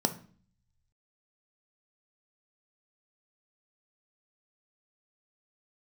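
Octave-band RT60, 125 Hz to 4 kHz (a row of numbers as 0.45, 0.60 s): 1.3, 0.75, 0.45, 0.45, 0.45, 0.45 s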